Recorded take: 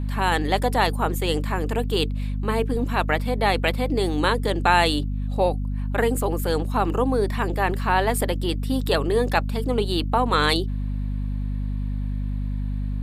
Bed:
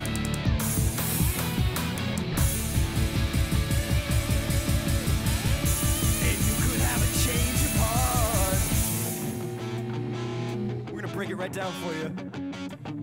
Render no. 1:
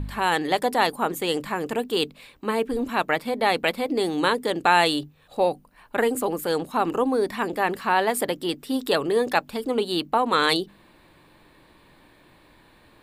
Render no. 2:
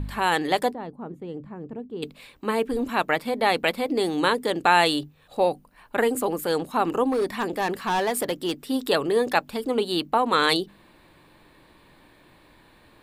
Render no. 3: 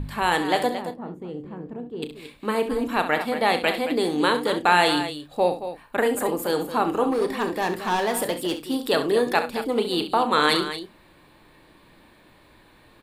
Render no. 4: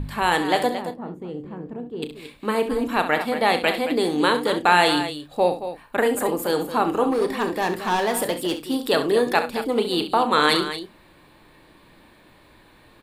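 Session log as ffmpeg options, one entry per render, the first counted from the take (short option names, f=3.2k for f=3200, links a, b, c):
-af "bandreject=f=50:t=h:w=4,bandreject=f=100:t=h:w=4,bandreject=f=150:t=h:w=4,bandreject=f=200:t=h:w=4,bandreject=f=250:t=h:w=4"
-filter_complex "[0:a]asplit=3[a][b][c];[a]afade=t=out:st=0.71:d=0.02[d];[b]bandpass=f=110:t=q:w=0.86,afade=t=in:st=0.71:d=0.02,afade=t=out:st=2.02:d=0.02[e];[c]afade=t=in:st=2.02:d=0.02[f];[d][e][f]amix=inputs=3:normalize=0,asettb=1/sr,asplit=3[g][h][i];[g]atrim=end=7.114[j];[h]atrim=start=7.11:end=8.63,asetpts=PTS-STARTPTS,afade=t=in:d=0.004:c=qsin,afade=t=out:st=1.516:d=0.004:c=qsin,volume=19.5dB,asoftclip=hard,volume=-19.5dB[k];[i]atrim=start=8.626[l];[j][k]acrossfade=d=0.004:c1=hsin:c2=qsin[m];[m][l]acrossfade=d=0.004:c1=qsin:c2=hsin"
-filter_complex "[0:a]asplit=2[a][b];[b]adelay=33,volume=-11.5dB[c];[a][c]amix=inputs=2:normalize=0,aecho=1:1:67.06|224.5:0.282|0.282"
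-af "volume=1.5dB"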